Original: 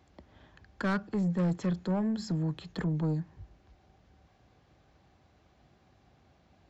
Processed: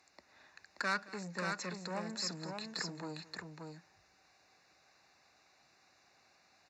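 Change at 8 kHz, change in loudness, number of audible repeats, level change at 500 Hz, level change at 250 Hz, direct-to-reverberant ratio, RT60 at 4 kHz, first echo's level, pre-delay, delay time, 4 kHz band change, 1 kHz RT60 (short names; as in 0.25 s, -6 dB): n/a, -8.5 dB, 2, -7.0 dB, -14.5 dB, none, none, -20.0 dB, none, 0.22 s, +7.0 dB, none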